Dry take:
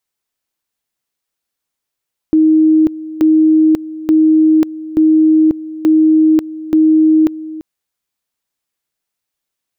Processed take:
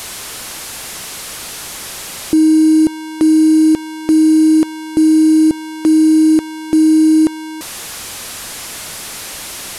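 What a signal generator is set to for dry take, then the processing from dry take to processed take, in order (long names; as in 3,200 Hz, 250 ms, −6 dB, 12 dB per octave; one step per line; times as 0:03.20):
tone at two levels in turn 314 Hz −6 dBFS, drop 17 dB, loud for 0.54 s, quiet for 0.34 s, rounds 6
linear delta modulator 64 kbit/s, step −20.5 dBFS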